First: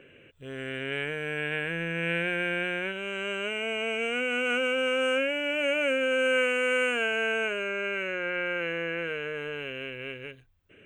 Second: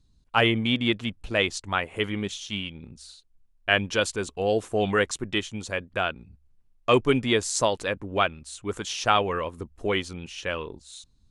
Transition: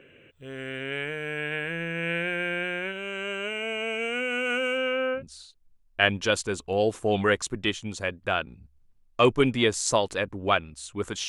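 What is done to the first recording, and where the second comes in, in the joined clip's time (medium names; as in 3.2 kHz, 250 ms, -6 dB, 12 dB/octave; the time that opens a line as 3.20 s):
first
4.77–5.23 s: low-pass 6.2 kHz -> 1 kHz
5.18 s: go over to second from 2.87 s, crossfade 0.10 s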